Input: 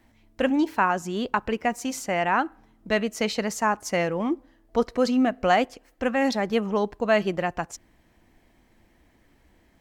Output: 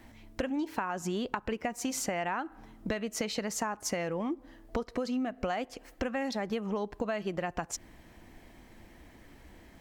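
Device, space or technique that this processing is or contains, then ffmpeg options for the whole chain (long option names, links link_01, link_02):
serial compression, peaks first: -af "acompressor=threshold=-31dB:ratio=6,acompressor=threshold=-38dB:ratio=2.5,volume=6.5dB"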